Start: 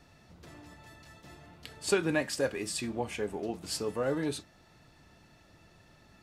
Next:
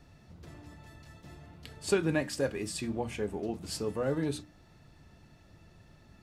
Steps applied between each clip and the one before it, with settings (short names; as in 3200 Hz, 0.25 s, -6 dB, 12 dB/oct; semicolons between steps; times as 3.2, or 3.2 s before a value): low shelf 280 Hz +9.5 dB; notches 60/120/180/240/300 Hz; gain -3 dB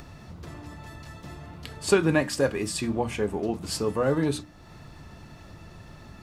bell 1100 Hz +5 dB 0.6 oct; in parallel at +1 dB: upward compressor, threshold -40 dBFS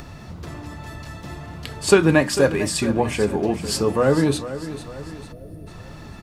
feedback echo 0.448 s, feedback 47%, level -13 dB; spectral gain 5.32–5.67, 720–8700 Hz -17 dB; gain +6.5 dB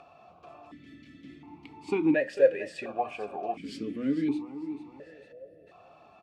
vowel sequencer 1.4 Hz